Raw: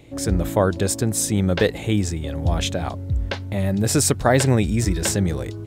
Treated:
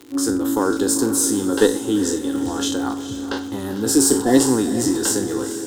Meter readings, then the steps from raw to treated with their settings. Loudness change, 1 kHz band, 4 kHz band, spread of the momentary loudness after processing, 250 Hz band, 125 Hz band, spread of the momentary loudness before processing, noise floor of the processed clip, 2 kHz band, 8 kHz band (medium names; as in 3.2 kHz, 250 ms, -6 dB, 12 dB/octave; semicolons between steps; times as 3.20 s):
+2.0 dB, 0.0 dB, +1.5 dB, 11 LU, +5.0 dB, -12.5 dB, 8 LU, -30 dBFS, -2.0 dB, +4.0 dB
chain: spectral sustain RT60 0.36 s; high-pass 140 Hz 24 dB/octave; in parallel at 0 dB: level held to a coarse grid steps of 15 dB; on the sum: dynamic bell 1.2 kHz, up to -5 dB, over -37 dBFS, Q 3.3; Chebyshev shaper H 8 -31 dB, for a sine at 4.5 dBFS; static phaser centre 620 Hz, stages 6; small resonant body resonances 270/1400/3100 Hz, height 7 dB; crackle 73 per s -28 dBFS; spectral replace 3.88–4.48 s, 740–1700 Hz both; on a send: echo that smears into a reverb 453 ms, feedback 42%, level -11 dB